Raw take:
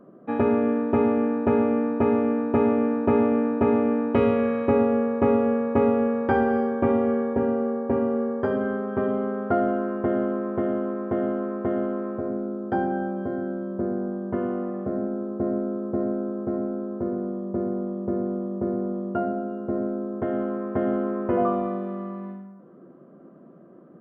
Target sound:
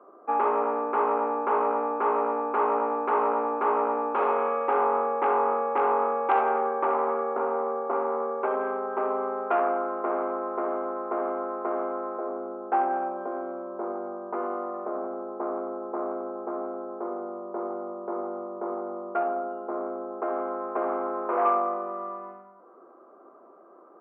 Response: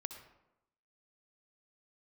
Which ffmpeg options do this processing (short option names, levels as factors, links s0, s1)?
-filter_complex "[0:a]aeval=exprs='0.398*(cos(1*acos(clip(val(0)/0.398,-1,1)))-cos(1*PI/2))+0.141*(cos(3*acos(clip(val(0)/0.398,-1,1)))-cos(3*PI/2))+0.158*(cos(5*acos(clip(val(0)/0.398,-1,1)))-cos(5*PI/2))':c=same,highpass=f=420:w=0.5412,highpass=f=420:w=1.3066,equalizer=f=540:t=q:w=4:g=-5,equalizer=f=840:t=q:w=4:g=7,equalizer=f=1200:t=q:w=4:g=7,equalizer=f=1800:t=q:w=4:g=-9,lowpass=f=2200:w=0.5412,lowpass=f=2200:w=1.3066[s0];[1:a]atrim=start_sample=2205,atrim=end_sample=4410[s1];[s0][s1]afir=irnorm=-1:irlink=0"